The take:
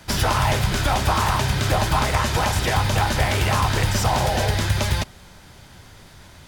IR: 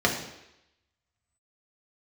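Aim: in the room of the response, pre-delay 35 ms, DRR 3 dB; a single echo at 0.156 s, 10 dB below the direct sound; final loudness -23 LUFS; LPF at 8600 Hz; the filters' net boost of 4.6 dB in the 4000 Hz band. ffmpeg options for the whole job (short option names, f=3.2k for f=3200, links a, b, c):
-filter_complex "[0:a]lowpass=8.6k,equalizer=f=4k:t=o:g=6,aecho=1:1:156:0.316,asplit=2[a][b];[1:a]atrim=start_sample=2205,adelay=35[c];[b][c]afir=irnorm=-1:irlink=0,volume=-18dB[d];[a][d]amix=inputs=2:normalize=0,volume=-5dB"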